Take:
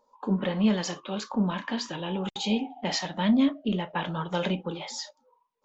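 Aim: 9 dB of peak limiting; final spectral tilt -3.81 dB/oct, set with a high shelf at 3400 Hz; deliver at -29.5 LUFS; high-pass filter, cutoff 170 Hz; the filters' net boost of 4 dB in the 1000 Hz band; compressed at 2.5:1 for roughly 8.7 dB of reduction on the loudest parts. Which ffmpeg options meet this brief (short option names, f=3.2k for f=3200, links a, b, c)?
-af "highpass=170,equalizer=f=1k:t=o:g=4,highshelf=f=3.4k:g=9,acompressor=threshold=-32dB:ratio=2.5,volume=7dB,alimiter=limit=-20dB:level=0:latency=1"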